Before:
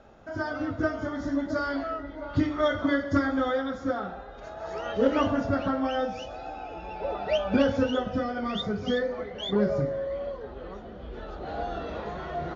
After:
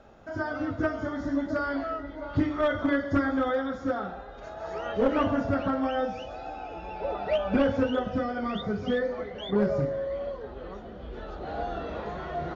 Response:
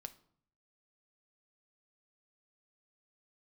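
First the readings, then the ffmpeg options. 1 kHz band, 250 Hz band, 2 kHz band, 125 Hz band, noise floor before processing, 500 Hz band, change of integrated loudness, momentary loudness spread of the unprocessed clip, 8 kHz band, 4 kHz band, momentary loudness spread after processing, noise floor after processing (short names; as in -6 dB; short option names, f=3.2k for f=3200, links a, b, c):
0.0 dB, -0.5 dB, -0.5 dB, -0.5 dB, -42 dBFS, -0.5 dB, -0.5 dB, 14 LU, n/a, -5.0 dB, 13 LU, -42 dBFS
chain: -filter_complex "[0:a]aeval=exprs='clip(val(0),-1,0.106)':c=same,acrossover=split=3100[a][b];[b]acompressor=threshold=-56dB:ratio=4:attack=1:release=60[c];[a][c]amix=inputs=2:normalize=0"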